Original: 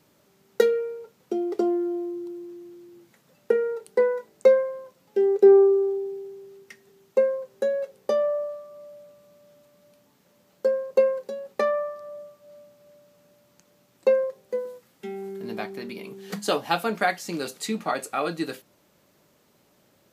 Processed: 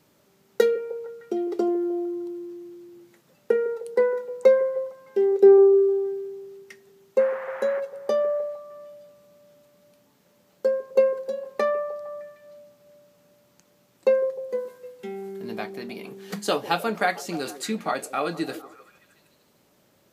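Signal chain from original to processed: 7.18–7.79 s: band noise 580–1900 Hz -39 dBFS; repeats whose band climbs or falls 153 ms, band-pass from 380 Hz, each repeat 0.7 oct, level -12 dB

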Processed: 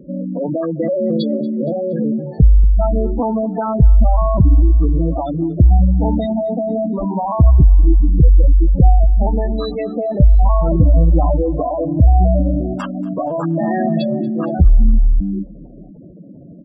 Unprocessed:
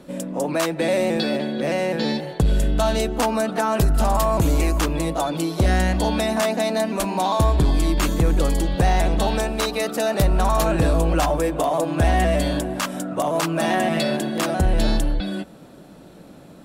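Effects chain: spectral gate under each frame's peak -10 dB strong; bass shelf 330 Hz +10.5 dB; feedback delay 234 ms, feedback 48%, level -22 dB

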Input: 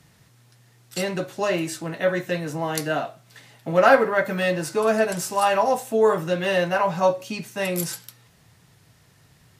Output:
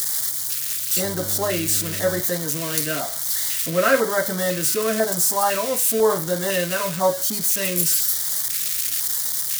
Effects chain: zero-crossing glitches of -14.5 dBFS; 1.03–2.20 s: mains buzz 100 Hz, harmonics 8, -35 dBFS -6 dB/octave; LFO notch square 1 Hz 820–2600 Hz

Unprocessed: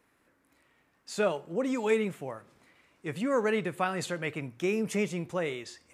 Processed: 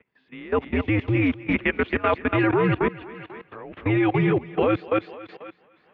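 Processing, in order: reverse the whole clip; level rider gain up to 15.5 dB; thinning echo 253 ms, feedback 49%, high-pass 370 Hz, level -5 dB; level held to a coarse grid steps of 19 dB; mistuned SSB -98 Hz 200–3300 Hz

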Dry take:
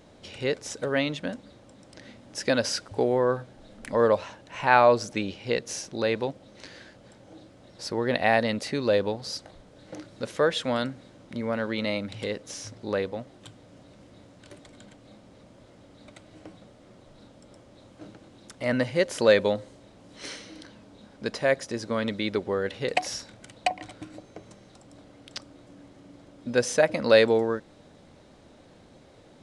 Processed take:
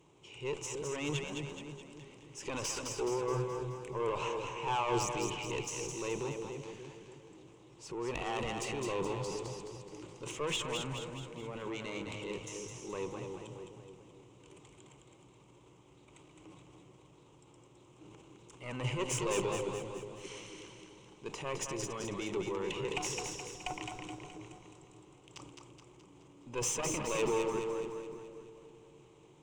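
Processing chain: high-pass 49 Hz 24 dB/octave; transient shaper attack -3 dB, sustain +10 dB; valve stage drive 20 dB, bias 0.55; rippled EQ curve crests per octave 0.7, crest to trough 14 dB; two-band feedback delay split 590 Hz, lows 289 ms, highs 212 ms, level -4.5 dB; trim -9 dB

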